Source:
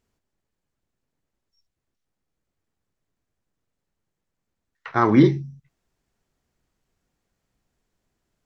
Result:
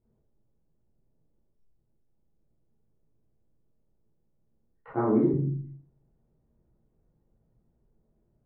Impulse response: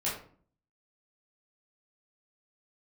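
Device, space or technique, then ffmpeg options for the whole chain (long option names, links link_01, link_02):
television next door: -filter_complex "[0:a]acompressor=threshold=-24dB:ratio=6,lowpass=510[link_01];[1:a]atrim=start_sample=2205[link_02];[link_01][link_02]afir=irnorm=-1:irlink=0,asettb=1/sr,asplit=3[link_03][link_04][link_05];[link_03]atrim=end=4.934[link_06];[link_04]atrim=start=4.93:end=5.34,asetpts=PTS-STARTPTS,afade=type=in:duration=0.004:curve=qsin,afade=type=out:start_time=0.406:duration=0.004:curve=qsin,highpass=220[link_07];[link_05]atrim=start=5.336[link_08];[link_06][link_07]acrossfade=duration=0.004:curve1=hsin:curve2=qsin[link_09];[link_09][link_08]acrossfade=duration=0.004:curve1=qsin:curve2=hsin,volume=1.5dB"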